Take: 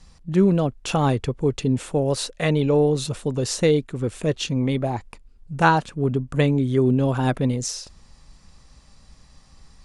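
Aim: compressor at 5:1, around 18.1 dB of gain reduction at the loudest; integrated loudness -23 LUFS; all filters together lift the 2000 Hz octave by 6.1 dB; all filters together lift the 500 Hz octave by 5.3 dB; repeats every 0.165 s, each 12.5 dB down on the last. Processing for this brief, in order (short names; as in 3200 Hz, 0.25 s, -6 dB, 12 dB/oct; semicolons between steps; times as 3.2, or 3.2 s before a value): bell 500 Hz +6 dB; bell 2000 Hz +8 dB; compressor 5:1, threshold -30 dBFS; feedback echo 0.165 s, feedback 24%, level -12.5 dB; gain +10 dB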